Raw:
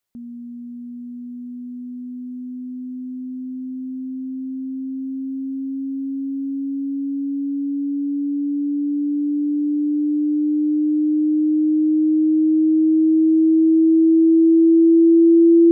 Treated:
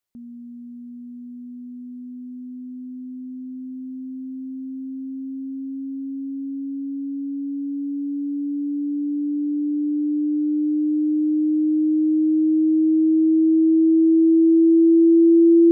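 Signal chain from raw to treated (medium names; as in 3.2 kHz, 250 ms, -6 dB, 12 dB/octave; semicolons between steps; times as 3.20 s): dynamic bell 410 Hz, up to +4 dB, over -26 dBFS, Q 1.8; trim -4 dB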